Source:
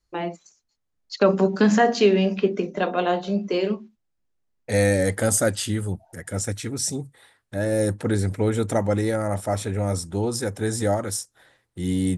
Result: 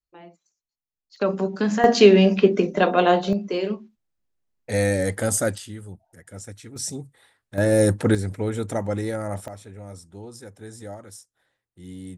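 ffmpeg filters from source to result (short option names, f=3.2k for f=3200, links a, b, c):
-af "asetnsamples=n=441:p=0,asendcmd='1.16 volume volume -5dB;1.84 volume volume 5dB;3.33 volume volume -2dB;5.58 volume volume -11.5dB;6.76 volume volume -4dB;7.58 volume volume 4.5dB;8.15 volume volume -4dB;9.48 volume volume -15dB',volume=-17dB"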